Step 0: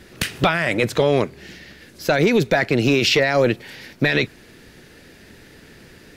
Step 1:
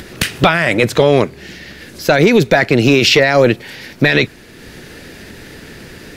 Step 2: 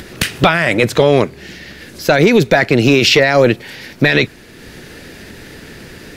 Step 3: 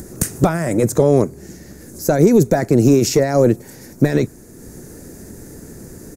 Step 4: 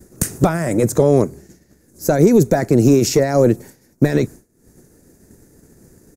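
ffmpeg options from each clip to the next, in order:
-af "acompressor=mode=upward:threshold=-34dB:ratio=2.5,volume=6.5dB"
-af anull
-af "firequalizer=gain_entry='entry(320,0);entry(540,-4);entry(3000,-26);entry(6600,4)':delay=0.05:min_phase=1"
-af "agate=range=-33dB:threshold=-27dB:ratio=3:detection=peak"

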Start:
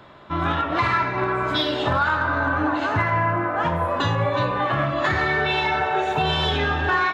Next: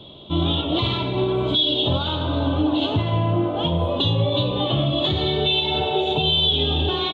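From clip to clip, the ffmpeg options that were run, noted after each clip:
-af "firequalizer=gain_entry='entry(390,0);entry(1700,-28);entry(3300,13);entry(5100,-15)':delay=0.05:min_phase=1,alimiter=limit=-17dB:level=0:latency=1:release=173,volume=6dB"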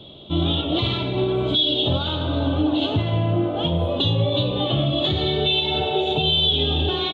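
-af "equalizer=f=1k:t=o:w=0.27:g=-7"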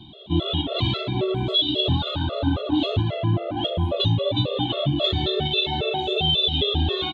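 -af "afftfilt=real='re*gt(sin(2*PI*3.7*pts/sr)*(1-2*mod(floor(b*sr/1024/360),2)),0)':imag='im*gt(sin(2*PI*3.7*pts/sr)*(1-2*mod(floor(b*sr/1024/360),2)),0)':win_size=1024:overlap=0.75,volume=1.5dB"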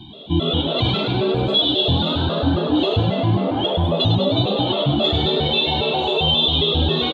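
-filter_complex "[0:a]asplit=9[a][b][c][d][e][f][g][h][i];[b]adelay=101,afreqshift=81,volume=-7dB[j];[c]adelay=202,afreqshift=162,volume=-11.2dB[k];[d]adelay=303,afreqshift=243,volume=-15.3dB[l];[e]adelay=404,afreqshift=324,volume=-19.5dB[m];[f]adelay=505,afreqshift=405,volume=-23.6dB[n];[g]adelay=606,afreqshift=486,volume=-27.8dB[o];[h]adelay=707,afreqshift=567,volume=-31.9dB[p];[i]adelay=808,afreqshift=648,volume=-36.1dB[q];[a][j][k][l][m][n][o][p][q]amix=inputs=9:normalize=0,asplit=2[r][s];[s]alimiter=limit=-18dB:level=0:latency=1,volume=-3dB[t];[r][t]amix=inputs=2:normalize=0"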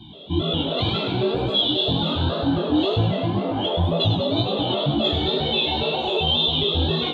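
-af "flanger=delay=17.5:depth=6.1:speed=2"

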